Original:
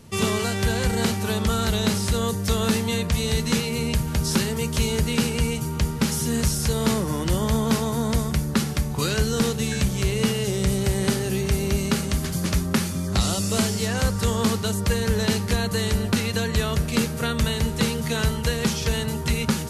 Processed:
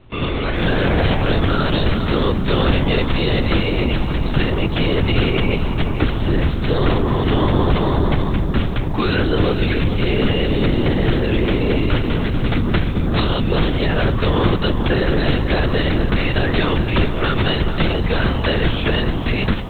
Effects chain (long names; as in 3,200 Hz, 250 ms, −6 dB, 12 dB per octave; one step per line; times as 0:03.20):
high-pass filter 90 Hz 24 dB per octave
automatic gain control gain up to 14 dB
soft clipping −11.5 dBFS, distortion −14 dB
linear-prediction vocoder at 8 kHz whisper
feedback echo at a low word length 440 ms, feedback 35%, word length 8 bits, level −11 dB
level +2 dB